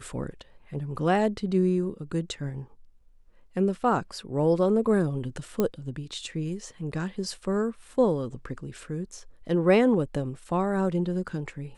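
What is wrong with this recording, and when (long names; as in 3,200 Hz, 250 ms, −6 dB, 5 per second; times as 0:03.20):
0:05.60: click −12 dBFS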